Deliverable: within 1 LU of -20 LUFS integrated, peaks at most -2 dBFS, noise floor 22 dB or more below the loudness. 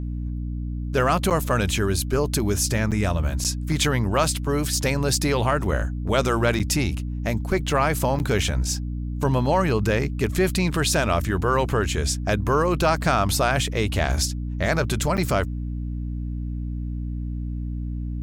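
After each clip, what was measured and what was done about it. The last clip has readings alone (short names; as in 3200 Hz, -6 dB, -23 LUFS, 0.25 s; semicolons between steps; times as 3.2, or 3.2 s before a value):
dropouts 6; longest dropout 7.7 ms; hum 60 Hz; harmonics up to 300 Hz; hum level -26 dBFS; loudness -23.5 LUFS; peak -7.5 dBFS; loudness target -20.0 LUFS
-> interpolate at 1.3/2.91/3.44/6.59/8.19/15.17, 7.7 ms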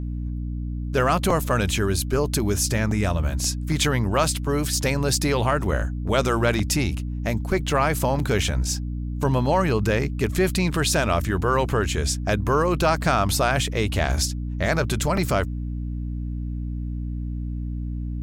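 dropouts 0; hum 60 Hz; harmonics up to 300 Hz; hum level -26 dBFS
-> notches 60/120/180/240/300 Hz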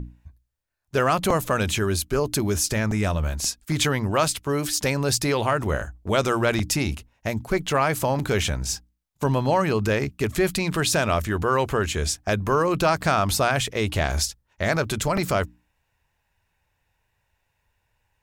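hum none; loudness -23.5 LUFS; peak -7.5 dBFS; loudness target -20.0 LUFS
-> gain +3.5 dB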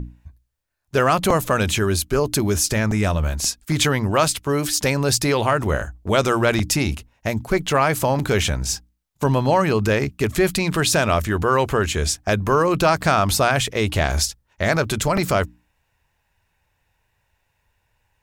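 loudness -20.0 LUFS; peak -4.0 dBFS; noise floor -70 dBFS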